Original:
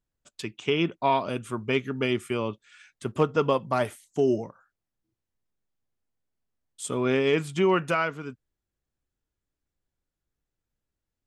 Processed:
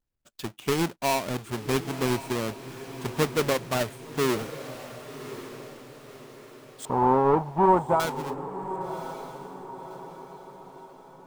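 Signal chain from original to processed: half-waves squared off; 6.85–8 synth low-pass 890 Hz, resonance Q 7.9; diffused feedback echo 1.099 s, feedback 45%, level -12 dB; gain -5.5 dB

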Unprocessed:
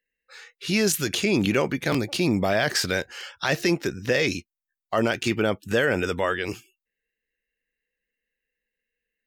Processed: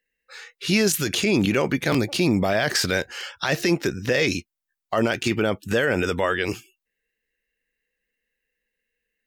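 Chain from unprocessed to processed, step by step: limiter -15 dBFS, peak gain reduction 4.5 dB; gain +4 dB

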